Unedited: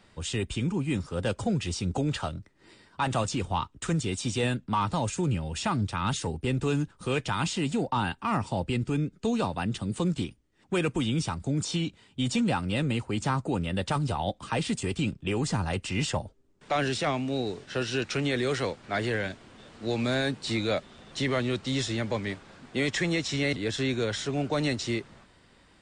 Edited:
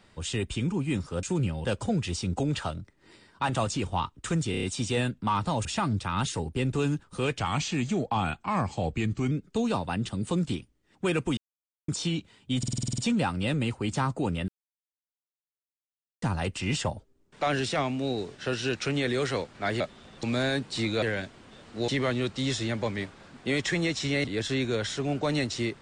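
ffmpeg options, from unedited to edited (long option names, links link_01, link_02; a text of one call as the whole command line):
ffmpeg -i in.wav -filter_complex "[0:a]asplit=26[link_01][link_02][link_03][link_04][link_05][link_06][link_07][link_08][link_09][link_10][link_11][link_12][link_13][link_14][link_15][link_16][link_17][link_18][link_19][link_20][link_21][link_22][link_23][link_24][link_25][link_26];[link_01]atrim=end=1.232[link_27];[link_02]atrim=start=5.108:end=5.532[link_28];[link_03]atrim=start=1.228:end=4.122[link_29];[link_04]atrim=start=4.088:end=4.122[link_30];[link_05]atrim=start=4.088:end=4.122[link_31];[link_06]atrim=start=4.088:end=4.122[link_32];[link_07]atrim=start=4.088:end=5.112[link_33];[link_08]atrim=start=5.528:end=7.274[link_34];[link_09]atrim=start=7.27:end=9,asetpts=PTS-STARTPTS,asetrate=39690,aresample=44100[link_35];[link_10]atrim=start=8.996:end=11.06,asetpts=PTS-STARTPTS,afade=type=out:start_time=2.06:duration=0.004:curve=hsin[link_36];[link_11]atrim=start=11.06:end=11.57,asetpts=PTS-STARTPTS,volume=0[link_37];[link_12]atrim=start=11.57:end=12.322,asetpts=PTS-STARTPTS,afade=type=in:duration=0.004:curve=hsin[link_38];[link_13]atrim=start=12.268:end=12.322[link_39];[link_14]atrim=start=12.268:end=12.322[link_40];[link_15]atrim=start=12.268:end=12.322[link_41];[link_16]atrim=start=12.268:end=12.322[link_42];[link_17]atrim=start=12.268:end=12.322[link_43];[link_18]atrim=start=12.268:end=12.322[link_44];[link_19]atrim=start=12.268:end=12.322[link_45];[link_20]atrim=start=12.268:end=13.77,asetpts=PTS-STARTPTS,afade=type=out:start_time=1.498:duration=0.004:curve=hsin[link_46];[link_21]atrim=start=13.77:end=15.51,asetpts=PTS-STARTPTS,volume=0[link_47];[link_22]atrim=start=15.51:end=19.092,asetpts=PTS-STARTPTS,afade=type=in:duration=0.004:curve=hsin[link_48];[link_23]atrim=start=20.738:end=21.172[link_49];[link_24]atrim=start=19.948:end=20.742[link_50];[link_25]atrim=start=19.088:end=19.952[link_51];[link_26]atrim=start=21.168[link_52];[link_27][link_28]acrossfade=duration=0.004:curve1=hsin:curve2=hsin[link_53];[link_53][link_29]acrossfade=duration=0.004:curve1=hsin:curve2=hsin[link_54];[link_54][link_30]acrossfade=duration=0.004:curve1=hsin:curve2=hsin[link_55];[link_55][link_31]acrossfade=duration=0.004:curve1=hsin:curve2=hsin[link_56];[link_56][link_32]acrossfade=duration=0.004:curve1=hsin:curve2=hsin[link_57];[link_57][link_33]acrossfade=duration=0.004:curve1=hsin:curve2=hsin[link_58];[link_58][link_34]acrossfade=duration=0.004:curve1=hsin:curve2=hsin[link_59];[link_59][link_35]acrossfade=duration=0.004:curve1=hsin:curve2=hsin[link_60];[link_36][link_37][link_38]concat=n=3:v=0:a=1[link_61];[link_60][link_61]acrossfade=duration=0.004:curve1=hsin:curve2=hsin[link_62];[link_62][link_39]acrossfade=duration=0.004:curve1=hsin:curve2=hsin[link_63];[link_63][link_40]acrossfade=duration=0.004:curve1=hsin:curve2=hsin[link_64];[link_64][link_41]acrossfade=duration=0.004:curve1=hsin:curve2=hsin[link_65];[link_65][link_42]acrossfade=duration=0.004:curve1=hsin:curve2=hsin[link_66];[link_66][link_43]acrossfade=duration=0.004:curve1=hsin:curve2=hsin[link_67];[link_67][link_44]acrossfade=duration=0.004:curve1=hsin:curve2=hsin[link_68];[link_68][link_45]acrossfade=duration=0.004:curve1=hsin:curve2=hsin[link_69];[link_46][link_47][link_48]concat=n=3:v=0:a=1[link_70];[link_69][link_70]acrossfade=duration=0.004:curve1=hsin:curve2=hsin[link_71];[link_71][link_49]acrossfade=duration=0.004:curve1=hsin:curve2=hsin[link_72];[link_72][link_50]acrossfade=duration=0.004:curve1=hsin:curve2=hsin[link_73];[link_73][link_51]acrossfade=duration=0.004:curve1=hsin:curve2=hsin[link_74];[link_74][link_52]acrossfade=duration=0.004:curve1=hsin:curve2=hsin" out.wav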